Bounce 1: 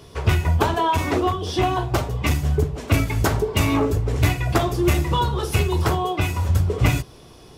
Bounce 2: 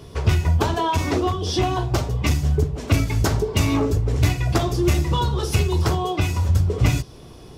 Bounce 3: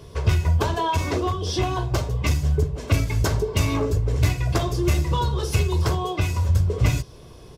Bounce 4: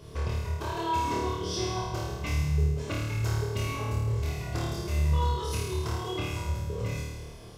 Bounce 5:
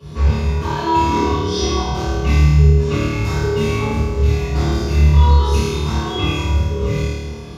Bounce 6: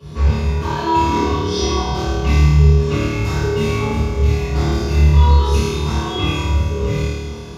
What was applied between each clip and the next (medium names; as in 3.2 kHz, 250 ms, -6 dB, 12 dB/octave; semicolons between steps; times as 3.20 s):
bass shelf 450 Hz +6 dB; in parallel at +1 dB: compression, threshold -23 dBFS, peak gain reduction 15.5 dB; on the sum: dynamic bell 5.4 kHz, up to +8 dB, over -43 dBFS, Q 1; trim -7 dB
comb 1.9 ms, depth 30%; trim -2.5 dB
compression, threshold -26 dBFS, peak gain reduction 12.5 dB; on a send: flutter echo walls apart 4.6 m, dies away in 1.2 s; on the sum: trim -6 dB
reverberation RT60 0.70 s, pre-delay 3 ms, DRR -12 dB; trim -8 dB
thinning echo 366 ms, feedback 68%, level -15 dB